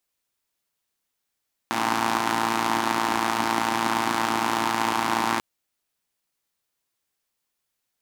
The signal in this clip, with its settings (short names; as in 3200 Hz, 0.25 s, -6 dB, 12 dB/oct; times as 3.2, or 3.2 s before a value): four-cylinder engine model, steady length 3.69 s, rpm 3400, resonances 290/880 Hz